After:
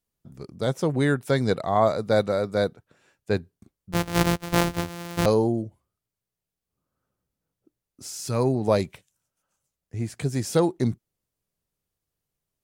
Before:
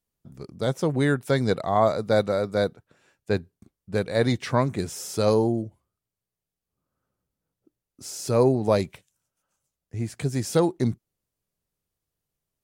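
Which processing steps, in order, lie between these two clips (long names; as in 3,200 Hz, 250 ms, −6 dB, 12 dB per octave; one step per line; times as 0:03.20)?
0:03.92–0:05.26: samples sorted by size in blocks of 256 samples
0:08.07–0:08.55: parametric band 480 Hz −14 dB → −3 dB 1.5 octaves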